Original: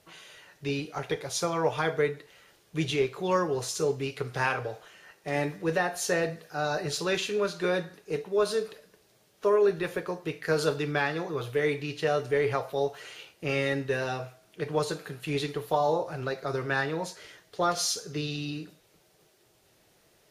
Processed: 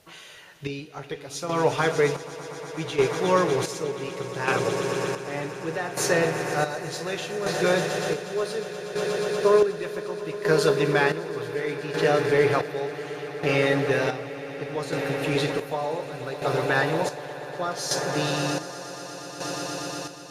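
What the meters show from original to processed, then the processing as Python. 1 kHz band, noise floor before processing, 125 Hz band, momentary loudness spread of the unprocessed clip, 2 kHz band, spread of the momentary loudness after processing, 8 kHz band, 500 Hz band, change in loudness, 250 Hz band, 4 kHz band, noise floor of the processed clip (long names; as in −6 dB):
+4.0 dB, −64 dBFS, +4.0 dB, 11 LU, +4.5 dB, 14 LU, +3.0 dB, +4.5 dB, +4.0 dB, +4.0 dB, +3.5 dB, −42 dBFS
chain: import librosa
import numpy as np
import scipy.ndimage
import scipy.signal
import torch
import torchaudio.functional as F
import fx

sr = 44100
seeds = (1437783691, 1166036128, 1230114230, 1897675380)

y = fx.echo_swell(x, sr, ms=120, loudest=8, wet_db=-14)
y = fx.chopper(y, sr, hz=0.67, depth_pct=60, duty_pct=45)
y = y * 10.0 ** (4.5 / 20.0)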